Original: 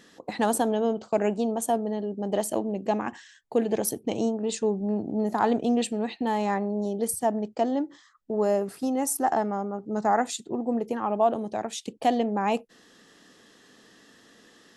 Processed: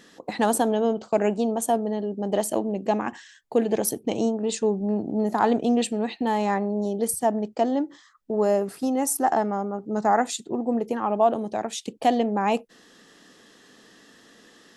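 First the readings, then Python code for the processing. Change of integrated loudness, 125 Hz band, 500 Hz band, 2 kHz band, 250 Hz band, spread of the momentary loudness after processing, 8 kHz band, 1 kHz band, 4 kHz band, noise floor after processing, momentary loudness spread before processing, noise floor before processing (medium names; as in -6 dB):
+2.5 dB, +2.0 dB, +2.5 dB, +2.5 dB, +2.5 dB, 6 LU, +2.5 dB, +2.5 dB, +2.5 dB, -55 dBFS, 6 LU, -57 dBFS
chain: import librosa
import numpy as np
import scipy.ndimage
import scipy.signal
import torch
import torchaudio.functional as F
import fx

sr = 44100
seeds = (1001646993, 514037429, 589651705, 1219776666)

y = fx.peak_eq(x, sr, hz=94.0, db=-3.5, octaves=0.77)
y = y * 10.0 ** (2.5 / 20.0)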